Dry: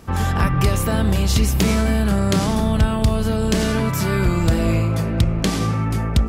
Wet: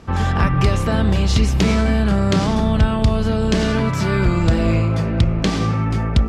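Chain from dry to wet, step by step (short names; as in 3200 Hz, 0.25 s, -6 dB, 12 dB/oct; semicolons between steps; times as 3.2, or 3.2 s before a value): LPF 5500 Hz 12 dB/oct; gain +1.5 dB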